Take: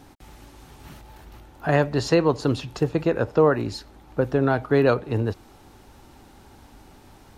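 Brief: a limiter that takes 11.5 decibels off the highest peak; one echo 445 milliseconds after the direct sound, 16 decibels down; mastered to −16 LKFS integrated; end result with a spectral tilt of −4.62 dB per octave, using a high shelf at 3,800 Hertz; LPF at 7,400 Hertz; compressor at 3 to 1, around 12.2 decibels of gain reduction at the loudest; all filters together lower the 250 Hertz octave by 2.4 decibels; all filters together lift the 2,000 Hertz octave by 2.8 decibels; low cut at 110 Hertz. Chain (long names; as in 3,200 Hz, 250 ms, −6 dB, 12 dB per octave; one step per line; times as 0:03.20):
high-pass filter 110 Hz
low-pass filter 7,400 Hz
parametric band 250 Hz −3 dB
parametric band 2,000 Hz +4.5 dB
high-shelf EQ 3,800 Hz −3 dB
downward compressor 3 to 1, threshold −31 dBFS
brickwall limiter −27.5 dBFS
single-tap delay 445 ms −16 dB
level +24 dB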